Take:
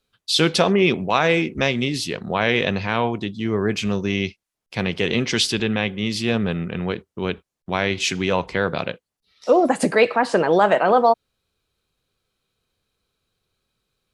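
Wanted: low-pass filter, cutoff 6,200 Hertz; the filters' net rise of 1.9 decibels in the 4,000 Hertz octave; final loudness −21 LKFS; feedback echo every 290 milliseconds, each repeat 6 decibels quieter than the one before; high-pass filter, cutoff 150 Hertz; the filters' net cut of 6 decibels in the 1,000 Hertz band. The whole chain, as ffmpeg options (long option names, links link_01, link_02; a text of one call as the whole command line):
ffmpeg -i in.wav -af "highpass=150,lowpass=6200,equalizer=frequency=1000:width_type=o:gain=-9,equalizer=frequency=4000:width_type=o:gain=3.5,aecho=1:1:290|580|870|1160|1450|1740:0.501|0.251|0.125|0.0626|0.0313|0.0157" out.wav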